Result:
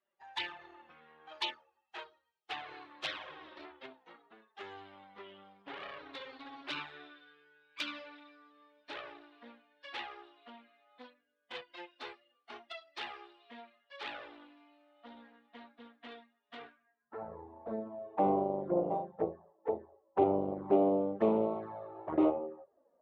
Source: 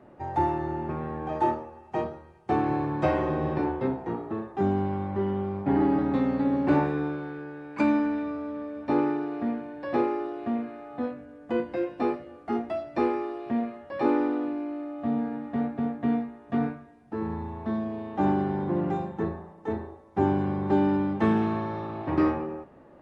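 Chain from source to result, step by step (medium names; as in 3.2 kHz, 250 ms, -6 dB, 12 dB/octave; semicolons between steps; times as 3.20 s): expander on every frequency bin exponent 1.5; Chebyshev shaper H 8 -17 dB, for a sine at -13 dBFS; band-pass sweep 3.5 kHz -> 600 Hz, 16.72–17.31 s; touch-sensitive flanger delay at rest 5.1 ms, full sweep at -36 dBFS; trim +7.5 dB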